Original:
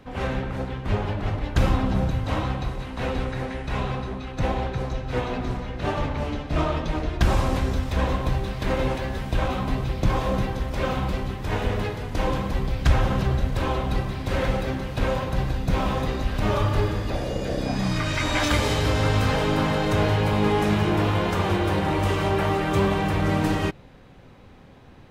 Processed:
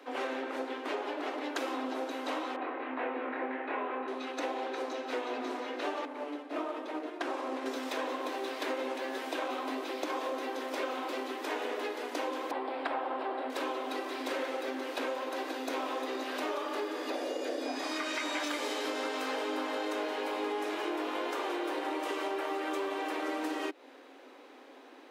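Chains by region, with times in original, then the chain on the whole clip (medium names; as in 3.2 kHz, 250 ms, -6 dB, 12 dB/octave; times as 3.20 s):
2.56–4.08 s: low-pass 2.4 kHz 24 dB/octave + doubling 24 ms -3 dB
6.05–7.66 s: CVSD coder 64 kbps + low-pass 2 kHz 6 dB/octave + upward expansion, over -32 dBFS
12.51–13.50 s: boxcar filter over 7 samples + peaking EQ 820 Hz +8.5 dB 1 oct
whole clip: steep high-pass 260 Hz 96 dB/octave; compression, threshold -32 dBFS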